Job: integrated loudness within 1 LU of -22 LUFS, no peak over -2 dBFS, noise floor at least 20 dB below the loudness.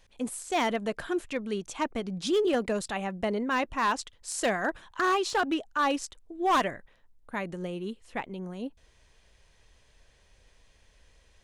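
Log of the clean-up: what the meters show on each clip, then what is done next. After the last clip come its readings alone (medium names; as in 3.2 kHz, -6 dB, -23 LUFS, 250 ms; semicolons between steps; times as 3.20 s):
clipped samples 0.9%; clipping level -20.0 dBFS; loudness -30.0 LUFS; peak level -20.0 dBFS; loudness target -22.0 LUFS
-> clip repair -20 dBFS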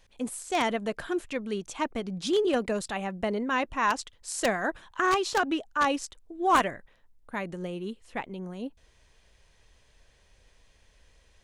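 clipped samples 0.0%; loudness -29.5 LUFS; peak level -11.0 dBFS; loudness target -22.0 LUFS
-> trim +7.5 dB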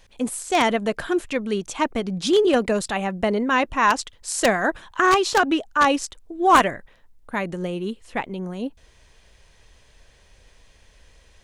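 loudness -22.0 LUFS; peak level -3.5 dBFS; noise floor -55 dBFS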